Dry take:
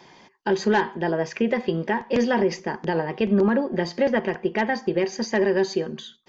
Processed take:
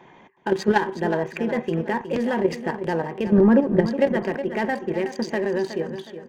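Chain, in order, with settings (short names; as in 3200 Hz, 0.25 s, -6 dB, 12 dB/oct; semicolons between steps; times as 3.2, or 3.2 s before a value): Wiener smoothing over 9 samples; 3.38–3.87 tilt -2.5 dB/oct; level quantiser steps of 9 dB; on a send: feedback echo 0.367 s, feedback 37%, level -11 dB; on the sum: gain +4 dB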